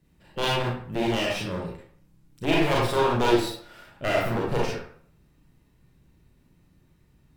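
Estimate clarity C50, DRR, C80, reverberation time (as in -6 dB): 0.5 dB, -4.5 dB, 6.0 dB, 0.55 s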